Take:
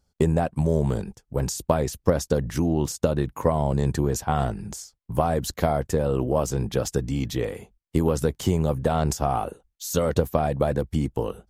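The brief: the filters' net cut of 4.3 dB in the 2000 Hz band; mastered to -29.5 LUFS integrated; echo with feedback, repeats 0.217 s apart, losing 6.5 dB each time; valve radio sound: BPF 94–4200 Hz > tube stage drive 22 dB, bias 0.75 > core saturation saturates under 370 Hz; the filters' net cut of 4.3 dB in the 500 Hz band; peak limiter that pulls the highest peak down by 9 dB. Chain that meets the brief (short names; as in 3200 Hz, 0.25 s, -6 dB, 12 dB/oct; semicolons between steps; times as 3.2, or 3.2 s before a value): bell 500 Hz -5 dB; bell 2000 Hz -5.5 dB; limiter -16.5 dBFS; BPF 94–4200 Hz; feedback echo 0.217 s, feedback 47%, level -6.5 dB; tube stage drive 22 dB, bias 0.75; core saturation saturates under 370 Hz; gain +6.5 dB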